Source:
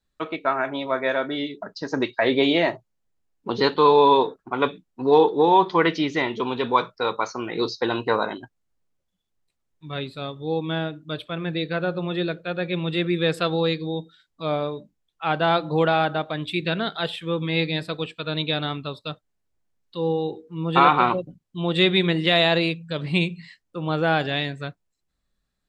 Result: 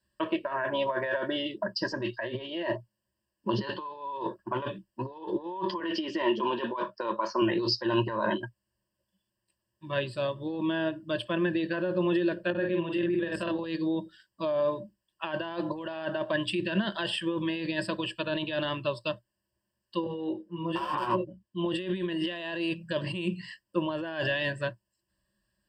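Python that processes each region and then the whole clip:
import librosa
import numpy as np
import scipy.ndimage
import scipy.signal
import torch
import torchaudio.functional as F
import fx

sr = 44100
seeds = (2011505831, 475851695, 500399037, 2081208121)

y = fx.chain(x, sr, fx.highpass(hz=210.0, slope=24),
    fx.high_shelf(hz=3700.0, db=-6.0),
    fx.notch(hz=2000.0, q=23.0), at=(5.8, 7.42))
y = fx.chain(y, sr, fx.high_shelf(hz=4000.0, db=-10.0),
    fx.level_steps(step_db=11),
    fx.doubler(ms=47.0, db=-3), at=(12.5, 13.64))
y = fx.chain(y, sr, fx.high_shelf(hz=4300.0, db=-6.0),
    fx.clip_hard(threshold_db=-11.5),
    fx.detune_double(cents=10), at=(20.04, 21.66))
y = scipy.signal.sosfilt(scipy.signal.butter(2, 63.0, 'highpass', fs=sr, output='sos'), y)
y = fx.over_compress(y, sr, threshold_db=-28.0, ratio=-1.0)
y = fx.ripple_eq(y, sr, per_octave=1.3, db=17)
y = F.gain(torch.from_numpy(y), -5.0).numpy()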